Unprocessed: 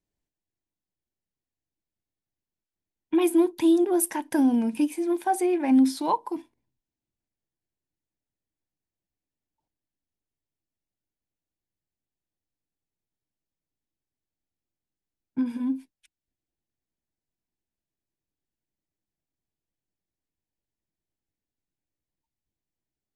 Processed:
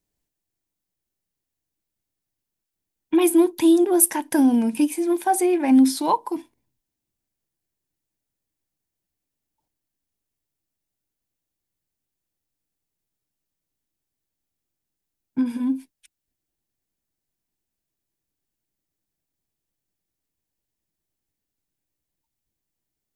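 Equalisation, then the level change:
high-shelf EQ 6,700 Hz +8 dB
+4.0 dB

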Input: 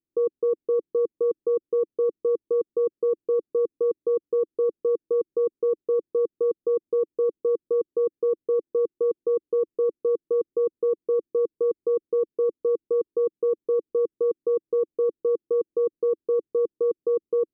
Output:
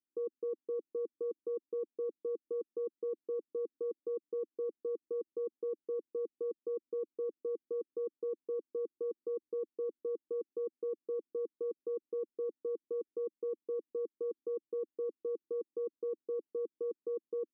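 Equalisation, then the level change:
resonant band-pass 250 Hz, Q 3.1
spectral tilt +4.5 dB per octave
+3.5 dB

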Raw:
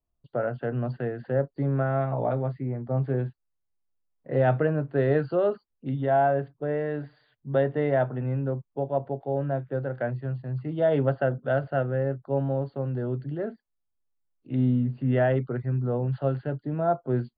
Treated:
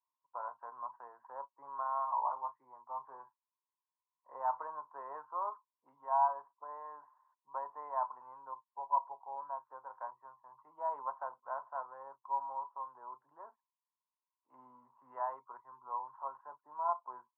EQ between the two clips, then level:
flat-topped band-pass 1,000 Hz, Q 7.1
high-frequency loss of the air 240 metres
+14.0 dB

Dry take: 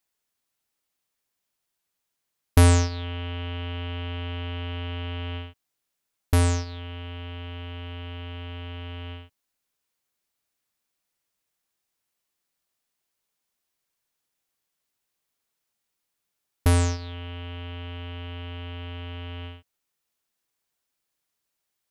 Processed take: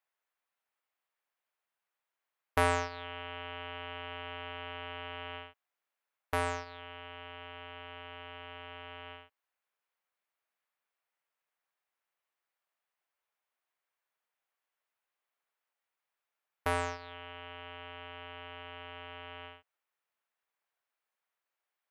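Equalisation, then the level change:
three-way crossover with the lows and the highs turned down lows −21 dB, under 490 Hz, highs −19 dB, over 2,600 Hz
high-shelf EQ 8,700 Hz +7 dB
0.0 dB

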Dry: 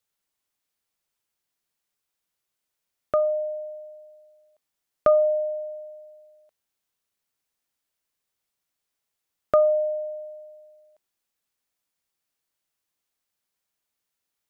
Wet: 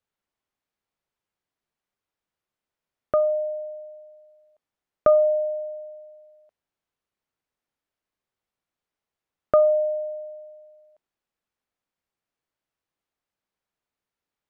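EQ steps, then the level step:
low-pass filter 1,500 Hz 6 dB per octave
+2.0 dB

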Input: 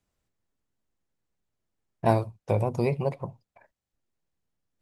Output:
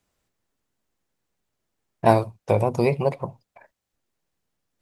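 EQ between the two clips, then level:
low-shelf EQ 200 Hz −6.5 dB
+7.0 dB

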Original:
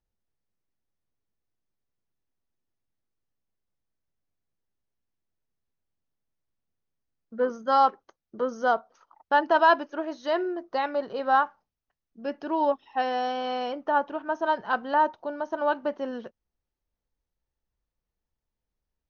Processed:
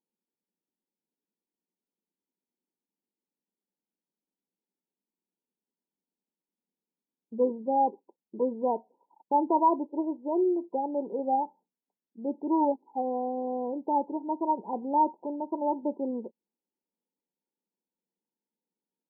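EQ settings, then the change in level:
parametric band 670 Hz −11.5 dB 0.57 octaves
dynamic equaliser 360 Hz, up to +4 dB, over −56 dBFS, Q 1.7
linear-phase brick-wall band-pass 170–1,000 Hz
+2.0 dB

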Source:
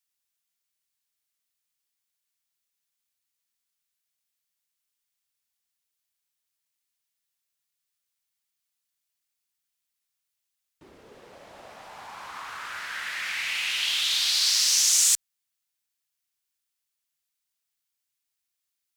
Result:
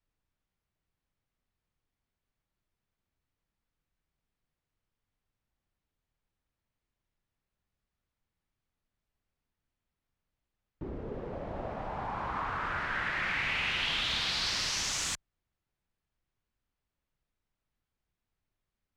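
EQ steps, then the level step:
low-pass filter 1,900 Hz 6 dB per octave
spectral tilt −4 dB per octave
+6.5 dB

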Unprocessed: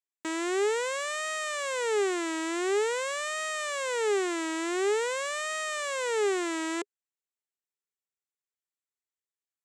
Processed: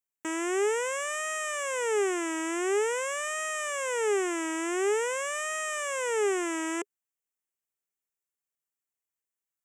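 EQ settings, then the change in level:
Butterworth band-reject 4,200 Hz, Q 1.7
high-shelf EQ 8,200 Hz +6.5 dB
0.0 dB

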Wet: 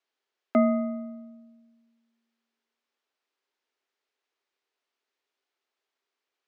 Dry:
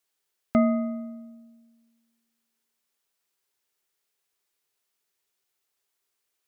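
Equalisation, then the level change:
elliptic high-pass filter 240 Hz
high-frequency loss of the air 160 metres
+2.0 dB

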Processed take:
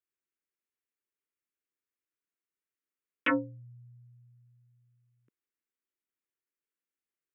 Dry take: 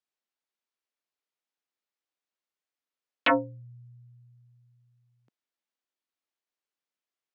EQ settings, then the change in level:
parametric band 390 Hz +7.5 dB 1 octave
phaser with its sweep stopped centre 1,800 Hz, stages 4
−3.0 dB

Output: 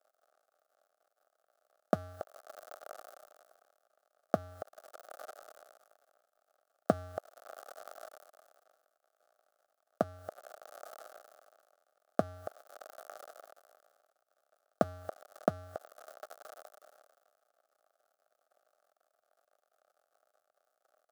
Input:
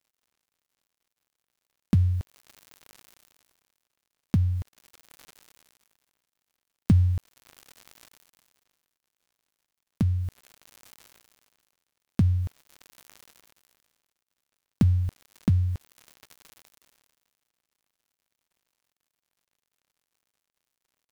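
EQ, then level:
high-pass with resonance 620 Hz, resonance Q 4.9
Butterworth band-reject 980 Hz, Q 2.5
high shelf with overshoot 1,700 Hz −10 dB, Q 3
+6.0 dB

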